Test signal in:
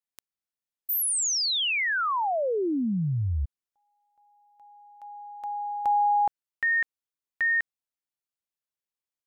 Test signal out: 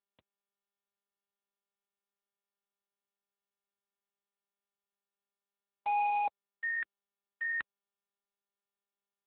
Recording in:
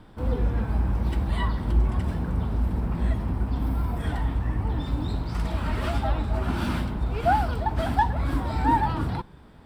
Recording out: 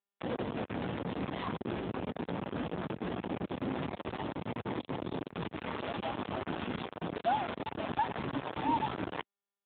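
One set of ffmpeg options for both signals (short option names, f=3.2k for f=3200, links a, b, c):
-af "acrusher=bits=3:mix=0:aa=0.000001,areverse,acompressor=mode=upward:threshold=-30dB:ratio=2.5:attack=48:release=757:knee=2.83:detection=peak,areverse,aeval=exprs='2.51*(cos(1*acos(clip(val(0)/2.51,-1,1)))-cos(1*PI/2))+0.178*(cos(5*acos(clip(val(0)/2.51,-1,1)))-cos(5*PI/2))':c=same,equalizer=f=1.9k:t=o:w=2.4:g=-6,aresample=11025,aeval=exprs='0.335*(abs(mod(val(0)/0.335+3,4)-2)-1)':c=same,aresample=44100,highpass=f=230:p=1,volume=-7dB" -ar 8000 -c:a libopencore_amrnb -b:a 7400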